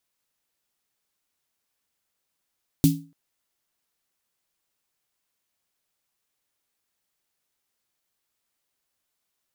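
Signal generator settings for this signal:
synth snare length 0.29 s, tones 160 Hz, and 280 Hz, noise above 3,000 Hz, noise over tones −11 dB, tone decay 0.35 s, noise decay 0.25 s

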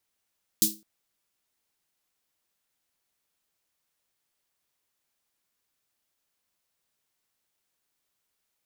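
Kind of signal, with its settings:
synth snare length 0.21 s, tones 210 Hz, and 320 Hz, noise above 4,000 Hz, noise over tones 10 dB, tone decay 0.32 s, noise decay 0.24 s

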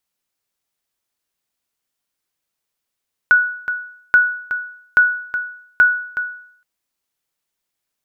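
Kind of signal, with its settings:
ping with an echo 1,470 Hz, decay 0.62 s, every 0.83 s, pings 4, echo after 0.37 s, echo −11 dB −4.5 dBFS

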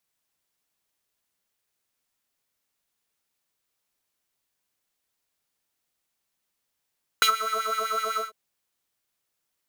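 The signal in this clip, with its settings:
subtractive patch with filter wobble A4, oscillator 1 triangle, oscillator 2 square, interval +19 semitones, sub −8.5 dB, noise −20 dB, filter highpass, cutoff 910 Hz, Q 2.9, filter envelope 1 octave, attack 1.3 ms, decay 0.09 s, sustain −17 dB, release 0.15 s, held 0.95 s, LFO 7.9 Hz, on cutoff 0.8 octaves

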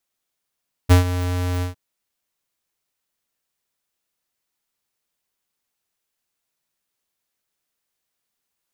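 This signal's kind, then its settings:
note with an ADSR envelope square 89.7 Hz, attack 24 ms, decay 122 ms, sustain −13.5 dB, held 0.73 s, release 126 ms −9 dBFS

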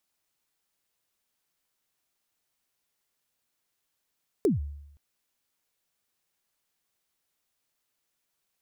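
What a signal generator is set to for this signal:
synth kick length 0.52 s, from 460 Hz, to 72 Hz, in 147 ms, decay 0.83 s, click on, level −17.5 dB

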